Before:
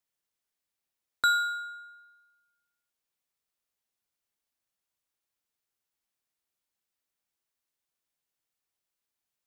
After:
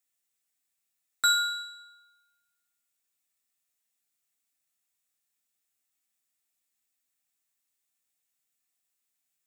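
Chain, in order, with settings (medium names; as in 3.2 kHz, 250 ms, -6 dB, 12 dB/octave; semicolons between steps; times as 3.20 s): treble shelf 4.8 kHz +6.5 dB; reverberation RT60 0.90 s, pre-delay 3 ms, DRR 2.5 dB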